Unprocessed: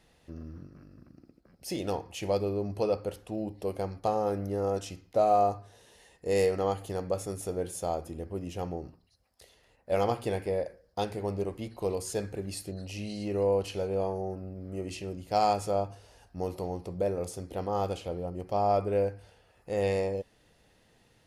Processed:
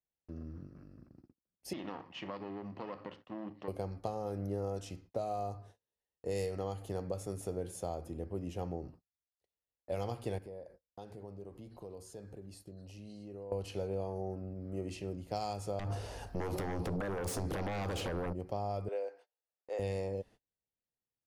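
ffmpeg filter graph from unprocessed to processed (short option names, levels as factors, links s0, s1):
-filter_complex "[0:a]asettb=1/sr,asplit=3[s0][s1][s2];[s0]atrim=end=1.734[s3];[s1]atrim=start=1.73:end=3.68,asetpts=PTS-STARTPTS,afade=t=in:d=0.004:c=qsin,afade=t=out:st=1.946:d=0.004:c=qsin,aeval=exprs='if(lt(val(0),0),0.251*val(0),val(0))':c=same,acompressor=threshold=0.02:ratio=4:attack=3.2:release=140:knee=1:detection=peak,highpass=150,equalizer=f=170:t=q:w=4:g=4,equalizer=f=260:t=q:w=4:g=5,equalizer=f=450:t=q:w=4:g=-6,equalizer=f=1100:t=q:w=4:g=8,equalizer=f=1900:t=q:w=4:g=9,equalizer=f=2900:t=q:w=4:g=8,lowpass=f=5000:w=0.5412,lowpass=f=5000:w=1.3066[s4];[s2]atrim=start=3.676[s5];[s3][s4]acrossfade=d=0.004:c1=hsin:c2=qsin[s6];[s6][s5]acrossfade=d=0.004:c1=qsin:c2=hsin,asettb=1/sr,asplit=3[s7][s8][s9];[s7]atrim=end=10.384[s10];[s8]atrim=start=10.38:end=13.52,asetpts=PTS-STARTPTS,afade=t=in:d=0.004:c=qsin,afade=t=out:st=3.136:d=0.004:c=qsin,acompressor=threshold=0.00501:ratio=3:attack=3.2:release=140:knee=1:detection=peak,equalizer=f=2200:t=o:w=0.61:g=-5.5[s11];[s9]atrim=start=13.516[s12];[s10][s11]acrossfade=d=0.004:c1=hsin:c2=qsin[s13];[s13][s12]acrossfade=d=0.004:c1=qsin:c2=hsin,asettb=1/sr,asplit=3[s14][s15][s16];[s14]atrim=end=15.794[s17];[s15]atrim=start=15.79:end=18.33,asetpts=PTS-STARTPTS,afade=t=in:d=0.004:c=qsin,afade=t=out:st=2.536:d=0.004:c=qsin,acompressor=threshold=0.0158:ratio=12:attack=3.2:release=140:knee=1:detection=peak,aeval=exprs='0.0376*sin(PI/2*3.98*val(0)/0.0376)':c=same[s18];[s16]atrim=start=18.326[s19];[s17][s18]acrossfade=d=0.004:c1=hsin:c2=qsin[s20];[s20][s19]acrossfade=d=0.004:c1=qsin:c2=hsin,asettb=1/sr,asplit=3[s21][s22][s23];[s21]atrim=end=18.884[s24];[s22]atrim=start=18.88:end=19.79,asetpts=PTS-STARTPTS,afade=t=in:d=0.004:c=qsin,afade=t=out:st=0.906:d=0.004:c=qsin,highpass=f=440:w=0.5412,highpass=f=440:w=1.3066,equalizer=f=11000:t=o:w=0.5:g=-14.5[s25];[s23]atrim=start=19.786[s26];[s24][s25]acrossfade=d=0.004:c1=hsin:c2=qsin[s27];[s27][s26]acrossfade=d=0.004:c1=qsin:c2=hsin,acrossover=split=130|3000[s28][s29][s30];[s29]acompressor=threshold=0.0282:ratio=10[s31];[s28][s31][s30]amix=inputs=3:normalize=0,tiltshelf=f=1400:g=3,agate=range=0.02:threshold=0.00316:ratio=16:detection=peak,volume=0.562"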